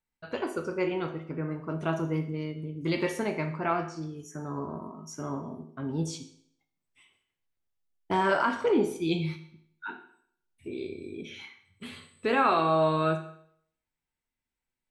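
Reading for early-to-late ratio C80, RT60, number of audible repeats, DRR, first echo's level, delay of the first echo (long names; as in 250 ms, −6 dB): 14.0 dB, 0.65 s, no echo audible, 5.5 dB, no echo audible, no echo audible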